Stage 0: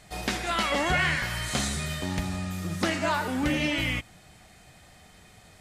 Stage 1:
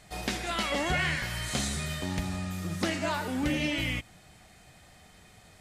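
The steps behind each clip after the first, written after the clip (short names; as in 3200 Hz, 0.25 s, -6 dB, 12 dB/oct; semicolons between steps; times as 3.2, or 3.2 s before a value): dynamic EQ 1200 Hz, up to -4 dB, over -37 dBFS, Q 0.99; gain -2 dB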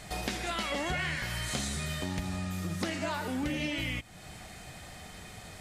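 compressor 2.5:1, threshold -45 dBFS, peak gain reduction 14 dB; gain +8.5 dB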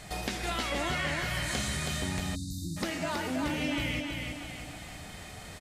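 feedback echo 0.323 s, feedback 47%, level -4 dB; spectral delete 2.35–2.77, 350–3600 Hz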